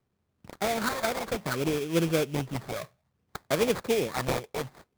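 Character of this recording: phasing stages 12, 0.62 Hz, lowest notch 270–3700 Hz; aliases and images of a low sample rate 2.9 kHz, jitter 20%

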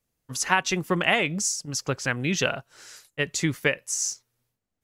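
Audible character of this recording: noise floor -82 dBFS; spectral tilt -3.0 dB/octave

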